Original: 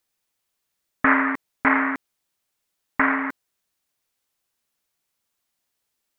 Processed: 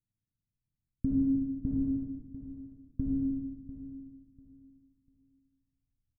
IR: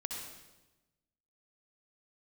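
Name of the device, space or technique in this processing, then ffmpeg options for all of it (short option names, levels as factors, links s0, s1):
next room: -filter_complex "[0:a]lowpass=f=280:w=0.5412,lowpass=f=280:w=1.3066[s0];[1:a]atrim=start_sample=2205[s1];[s0][s1]afir=irnorm=-1:irlink=0,equalizer=f=125:t=o:w=1:g=11,equalizer=f=250:t=o:w=1:g=-4,equalizer=f=500:t=o:w=1:g=-6,equalizer=f=1000:t=o:w=1:g=-11,equalizer=f=2000:t=o:w=1:g=4,aecho=1:1:695|1390|2085:0.2|0.0499|0.0125,asubboost=boost=7.5:cutoff=66,volume=1.41"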